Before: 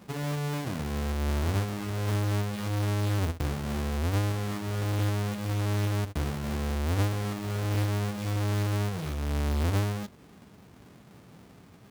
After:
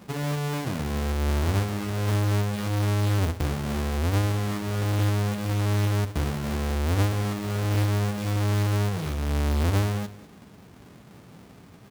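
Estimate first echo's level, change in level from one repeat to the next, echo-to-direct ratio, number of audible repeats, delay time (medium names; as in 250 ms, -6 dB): -17.0 dB, no regular repeats, -17.0 dB, 1, 195 ms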